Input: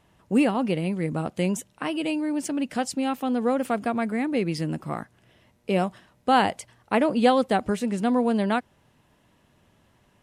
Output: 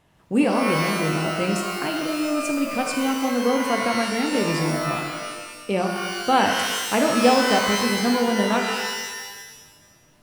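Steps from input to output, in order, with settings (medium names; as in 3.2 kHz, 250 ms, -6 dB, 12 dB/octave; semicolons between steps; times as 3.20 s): 1.97–2.37 s: median filter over 41 samples; pitch-shifted reverb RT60 1.3 s, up +12 st, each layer -2 dB, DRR 3 dB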